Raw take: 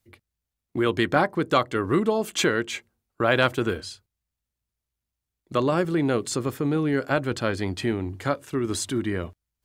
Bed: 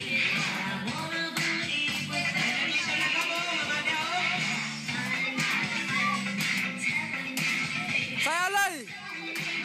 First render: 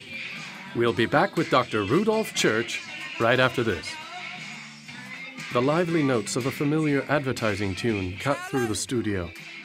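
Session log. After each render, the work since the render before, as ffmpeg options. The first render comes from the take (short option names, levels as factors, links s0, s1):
-filter_complex "[1:a]volume=0.376[s0];[0:a][s0]amix=inputs=2:normalize=0"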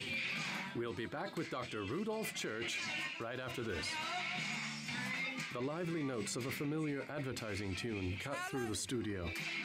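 -af "areverse,acompressor=threshold=0.0316:ratio=16,areverse,alimiter=level_in=2.24:limit=0.0631:level=0:latency=1:release=27,volume=0.447"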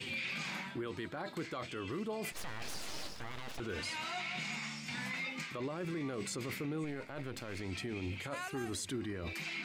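-filter_complex "[0:a]asettb=1/sr,asplit=3[s0][s1][s2];[s0]atrim=end=2.324[s3];[s1]atrim=start=2.32:end=3.6,asetpts=PTS-STARTPTS,afade=t=in:d=0.004:c=qsin,afade=t=out:st=1.276:d=0.004:c=qsin,aeval=exprs='abs(val(0))':c=same[s4];[s2]atrim=start=3.596[s5];[s3][s4]acrossfade=d=0.004:c1=hsin:c2=qsin[s6];[s6][s5]acrossfade=d=0.004:c1=qsin:c2=hsin,asettb=1/sr,asplit=3[s7][s8][s9];[s7]atrim=end=6.844[s10];[s8]atrim=start=6.84:end=7.61,asetpts=PTS-STARTPTS,afade=t=in:d=0.004:c=qsin,afade=t=out:st=0.766:d=0.004:c=qsin,aeval=exprs='if(lt(val(0),0),0.447*val(0),val(0))':c=same[s11];[s9]atrim=start=7.606[s12];[s10][s11]acrossfade=d=0.004:c1=hsin:c2=qsin[s13];[s13][s12]acrossfade=d=0.004:c1=qsin:c2=hsin"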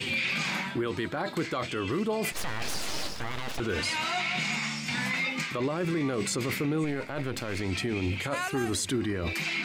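-af "volume=3.16"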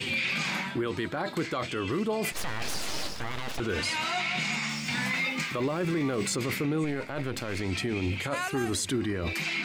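-filter_complex "[0:a]asettb=1/sr,asplit=3[s0][s1][s2];[s0]atrim=end=4.694[s3];[s1]atrim=start=4.69:end=6.36,asetpts=PTS-STARTPTS,afade=t=in:d=0.004:c=qsin,afade=t=out:st=1.666:d=0.004:c=qsin,aeval=exprs='val(0)+0.5*0.00501*sgn(val(0))':c=same[s4];[s2]atrim=start=6.356[s5];[s3][s4]acrossfade=d=0.004:c1=hsin:c2=qsin[s6];[s6][s5]acrossfade=d=0.004:c1=qsin:c2=hsin"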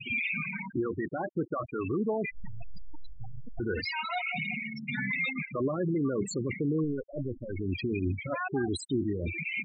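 -af "afftfilt=real='re*gte(hypot(re,im),0.0891)':imag='im*gte(hypot(re,im),0.0891)':win_size=1024:overlap=0.75"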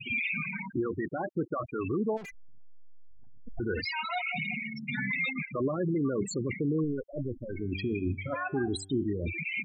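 -filter_complex "[0:a]asplit=3[s0][s1][s2];[s0]afade=t=out:st=2.16:d=0.02[s3];[s1]aeval=exprs='(tanh(126*val(0)+0.1)-tanh(0.1))/126':c=same,afade=t=in:st=2.16:d=0.02,afade=t=out:st=3.46:d=0.02[s4];[s2]afade=t=in:st=3.46:d=0.02[s5];[s3][s4][s5]amix=inputs=3:normalize=0,asettb=1/sr,asplit=3[s6][s7][s8];[s6]atrim=end=7.484[s9];[s7]atrim=start=7.48:end=9.06,asetpts=PTS-STARTPTS,afade=t=in:d=0.004:c=qsin,afade=t=out:st=1.576:d=0.004:c=qsin,bandreject=f=96.64:t=h:w=4,bandreject=f=193.28:t=h:w=4,bandreject=f=289.92:t=h:w=4,bandreject=f=386.56:t=h:w=4,bandreject=f=483.2:t=h:w=4,bandreject=f=579.84:t=h:w=4,bandreject=f=676.48:t=h:w=4,bandreject=f=773.12:t=h:w=4,bandreject=f=869.76:t=h:w=4,bandreject=f=966.4:t=h:w=4,bandreject=f=1063.04:t=h:w=4,bandreject=f=1159.68:t=h:w=4,bandreject=f=1256.32:t=h:w=4,bandreject=f=1352.96:t=h:w=4,bandreject=f=1449.6:t=h:w=4,bandreject=f=1546.24:t=h:w=4,bandreject=f=1642.88:t=h:w=4,bandreject=f=1739.52:t=h:w=4,bandreject=f=1836.16:t=h:w=4,bandreject=f=1932.8:t=h:w=4,bandreject=f=2029.44:t=h:w=4,bandreject=f=2126.08:t=h:w=4,bandreject=f=2222.72:t=h:w=4,bandreject=f=2319.36:t=h:w=4,bandreject=f=2416:t=h:w=4,bandreject=f=2512.64:t=h:w=4,bandreject=f=2609.28:t=h:w=4,bandreject=f=2705.92:t=h:w=4,bandreject=f=2802.56:t=h:w=4,bandreject=f=2899.2:t=h:w=4,bandreject=f=2995.84:t=h:w=4,bandreject=f=3092.48:t=h:w=4,bandreject=f=3189.12:t=h:w=4,bandreject=f=3285.76:t=h:w=4[s10];[s8]atrim=start=9.056[s11];[s9][s10]acrossfade=d=0.004:c1=hsin:c2=qsin[s12];[s12][s11]acrossfade=d=0.004:c1=qsin:c2=hsin"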